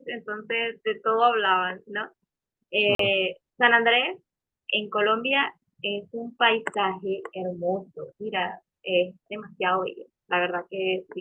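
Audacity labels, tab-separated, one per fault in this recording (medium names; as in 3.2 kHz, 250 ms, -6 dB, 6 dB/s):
2.950000	2.990000	dropout 43 ms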